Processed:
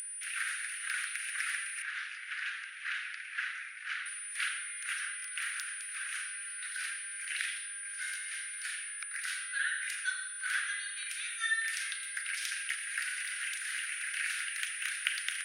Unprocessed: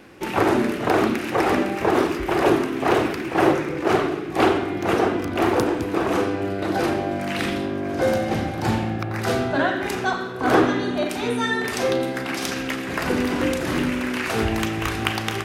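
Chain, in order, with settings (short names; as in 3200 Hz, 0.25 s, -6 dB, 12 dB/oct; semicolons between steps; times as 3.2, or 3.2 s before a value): whine 9400 Hz -29 dBFS; steep high-pass 1500 Hz 72 dB/oct; high shelf 2700 Hz -10 dB; upward compressor, threshold -39 dBFS; 1.82–4.06 air absorption 110 m; gain -2 dB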